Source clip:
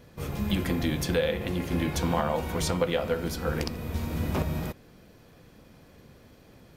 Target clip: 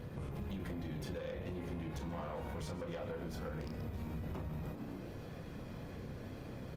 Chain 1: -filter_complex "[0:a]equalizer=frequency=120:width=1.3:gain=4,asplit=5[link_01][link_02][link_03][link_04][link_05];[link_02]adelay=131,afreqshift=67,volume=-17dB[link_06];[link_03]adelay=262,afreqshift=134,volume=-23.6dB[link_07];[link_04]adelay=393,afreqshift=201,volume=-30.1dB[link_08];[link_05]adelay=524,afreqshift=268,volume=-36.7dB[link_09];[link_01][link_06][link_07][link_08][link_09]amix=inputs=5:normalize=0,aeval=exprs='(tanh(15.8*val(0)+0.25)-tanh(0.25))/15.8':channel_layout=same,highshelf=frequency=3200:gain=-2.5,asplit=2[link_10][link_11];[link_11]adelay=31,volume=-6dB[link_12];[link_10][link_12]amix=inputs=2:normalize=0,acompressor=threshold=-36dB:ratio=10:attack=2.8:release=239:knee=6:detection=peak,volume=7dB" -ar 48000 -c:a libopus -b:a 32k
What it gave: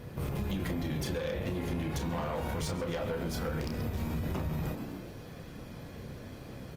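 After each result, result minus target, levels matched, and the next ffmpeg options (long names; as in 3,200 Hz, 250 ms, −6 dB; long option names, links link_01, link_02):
downward compressor: peak gain reduction −8 dB; 8,000 Hz band +4.5 dB
-filter_complex "[0:a]equalizer=frequency=120:width=1.3:gain=4,asplit=5[link_01][link_02][link_03][link_04][link_05];[link_02]adelay=131,afreqshift=67,volume=-17dB[link_06];[link_03]adelay=262,afreqshift=134,volume=-23.6dB[link_07];[link_04]adelay=393,afreqshift=201,volume=-30.1dB[link_08];[link_05]adelay=524,afreqshift=268,volume=-36.7dB[link_09];[link_01][link_06][link_07][link_08][link_09]amix=inputs=5:normalize=0,aeval=exprs='(tanh(15.8*val(0)+0.25)-tanh(0.25))/15.8':channel_layout=same,highshelf=frequency=3200:gain=-2.5,asplit=2[link_10][link_11];[link_11]adelay=31,volume=-6dB[link_12];[link_10][link_12]amix=inputs=2:normalize=0,acompressor=threshold=-45dB:ratio=10:attack=2.8:release=239:knee=6:detection=peak,volume=7dB" -ar 48000 -c:a libopus -b:a 32k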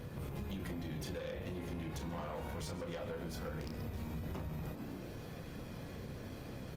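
8,000 Hz band +5.0 dB
-filter_complex "[0:a]equalizer=frequency=120:width=1.3:gain=4,asplit=5[link_01][link_02][link_03][link_04][link_05];[link_02]adelay=131,afreqshift=67,volume=-17dB[link_06];[link_03]adelay=262,afreqshift=134,volume=-23.6dB[link_07];[link_04]adelay=393,afreqshift=201,volume=-30.1dB[link_08];[link_05]adelay=524,afreqshift=268,volume=-36.7dB[link_09];[link_01][link_06][link_07][link_08][link_09]amix=inputs=5:normalize=0,aeval=exprs='(tanh(15.8*val(0)+0.25)-tanh(0.25))/15.8':channel_layout=same,highshelf=frequency=3200:gain=-9,asplit=2[link_10][link_11];[link_11]adelay=31,volume=-6dB[link_12];[link_10][link_12]amix=inputs=2:normalize=0,acompressor=threshold=-45dB:ratio=10:attack=2.8:release=239:knee=6:detection=peak,volume=7dB" -ar 48000 -c:a libopus -b:a 32k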